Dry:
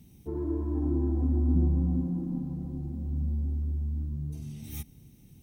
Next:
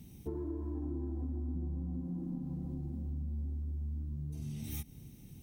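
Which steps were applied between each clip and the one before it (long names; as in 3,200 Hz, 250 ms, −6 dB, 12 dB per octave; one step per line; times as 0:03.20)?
downward compressor 6 to 1, threshold −38 dBFS, peak gain reduction 17 dB
level +2 dB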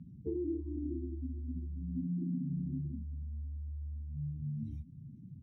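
expanding power law on the bin magnitudes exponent 2.2
band-pass filter 110–3,800 Hz
level +4.5 dB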